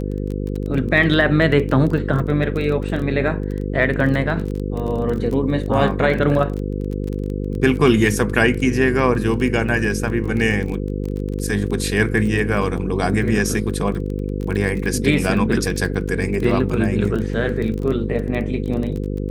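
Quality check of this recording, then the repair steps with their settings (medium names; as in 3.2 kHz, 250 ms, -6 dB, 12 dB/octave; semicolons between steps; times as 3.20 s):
buzz 50 Hz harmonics 10 -24 dBFS
crackle 20 per s -25 dBFS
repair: de-click; de-hum 50 Hz, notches 10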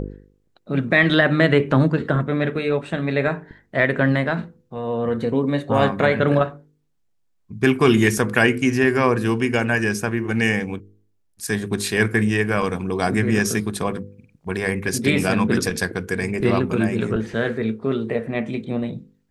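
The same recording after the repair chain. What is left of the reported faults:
nothing left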